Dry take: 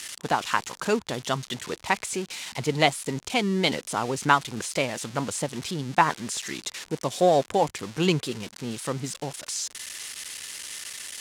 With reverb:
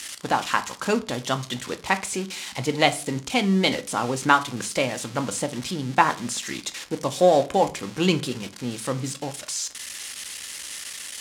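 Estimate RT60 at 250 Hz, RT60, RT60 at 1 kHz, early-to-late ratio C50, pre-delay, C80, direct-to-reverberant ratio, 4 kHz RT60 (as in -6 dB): 0.50 s, 0.40 s, 0.35 s, 17.0 dB, 4 ms, 23.5 dB, 8.5 dB, 0.30 s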